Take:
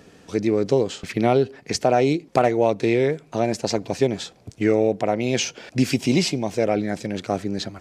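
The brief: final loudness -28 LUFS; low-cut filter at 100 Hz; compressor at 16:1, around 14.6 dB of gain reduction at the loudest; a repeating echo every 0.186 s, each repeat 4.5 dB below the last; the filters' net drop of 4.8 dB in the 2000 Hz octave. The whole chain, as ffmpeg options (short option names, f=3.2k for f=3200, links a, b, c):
-af "highpass=100,equalizer=f=2k:t=o:g=-6,acompressor=threshold=-28dB:ratio=16,aecho=1:1:186|372|558|744|930|1116|1302|1488|1674:0.596|0.357|0.214|0.129|0.0772|0.0463|0.0278|0.0167|0.01,volume=4.5dB"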